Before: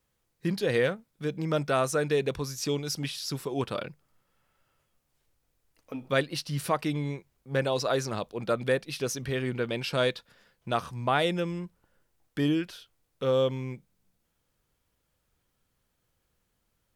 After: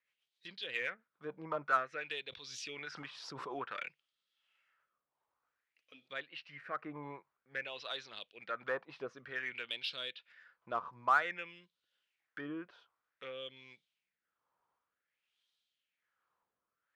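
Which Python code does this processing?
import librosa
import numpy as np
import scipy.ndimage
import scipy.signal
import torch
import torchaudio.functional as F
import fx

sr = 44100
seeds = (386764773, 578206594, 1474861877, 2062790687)

p1 = fx.rotary_switch(x, sr, hz=7.5, then_hz=1.2, switch_at_s=1.12)
p2 = fx.env_lowpass_down(p1, sr, base_hz=2400.0, full_db=-26.5)
p3 = fx.band_shelf(p2, sr, hz=6100.0, db=-12.5, octaves=2.4, at=(6.08, 7.03))
p4 = fx.filter_lfo_bandpass(p3, sr, shape='sine', hz=0.53, low_hz=950.0, high_hz=3700.0, q=3.9)
p5 = 10.0 ** (-40.0 / 20.0) * np.tanh(p4 / 10.0 ** (-40.0 / 20.0))
p6 = p4 + (p5 * librosa.db_to_amplitude(-8.0))
p7 = fx.pre_swell(p6, sr, db_per_s=34.0, at=(2.27, 3.58), fade=0.02)
y = p7 * librosa.db_to_amplitude(4.5)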